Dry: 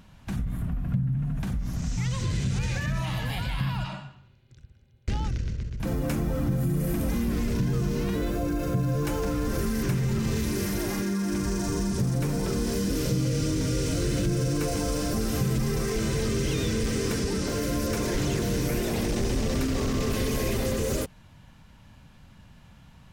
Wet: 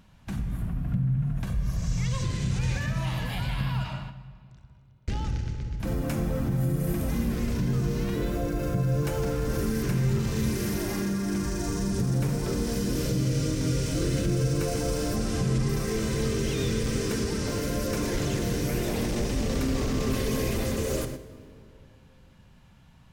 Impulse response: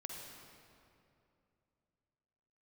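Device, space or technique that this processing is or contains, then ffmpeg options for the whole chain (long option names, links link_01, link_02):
keyed gated reverb: -filter_complex "[0:a]asettb=1/sr,asplit=3[link_01][link_02][link_03];[link_01]atrim=end=15.164[link_04];[link_02]atrim=start=15.16:end=15.69,asetpts=PTS-STARTPTS,afade=type=in:duration=0.004:curve=qsin,afade=type=out:start_time=0.526:duration=0.004:curve=qsin,lowpass=frequency=9700:width=0.5412,lowpass=frequency=9700:width=1.3066[link_05];[link_03]atrim=start=15.686[link_06];[link_04][link_05]acrossfade=duration=0.004:curve1=hsin:curve2=qsin[link_07];[link_07][link_06]acrossfade=duration=0.004:curve1=qsin:curve2=hsin,asplit=3[link_08][link_09][link_10];[1:a]atrim=start_sample=2205[link_11];[link_09][link_11]afir=irnorm=-1:irlink=0[link_12];[link_10]apad=whole_len=1019889[link_13];[link_12][link_13]sidechaingate=range=-7dB:threshold=-42dB:ratio=16:detection=peak,volume=3.5dB[link_14];[link_08][link_14]amix=inputs=2:normalize=0,asettb=1/sr,asplit=3[link_15][link_16][link_17];[link_15]atrim=end=1.444[link_18];[link_16]atrim=start=1.44:end=2.24,asetpts=PTS-STARTPTS,afade=type=in:duration=0.004:curve=qsin,afade=type=out:start_time=0.796:duration=0.004:curve=qsin,aecho=1:1:1.8:0.52,atrim=end_sample=35280[link_19];[link_17]atrim=start=2.236[link_20];[link_18][link_19]acrossfade=duration=0.004:curve1=hsin:curve2=qsin[link_21];[link_21][link_20]acrossfade=duration=0.004:curve1=qsin:curve2=hsin,volume=-7dB"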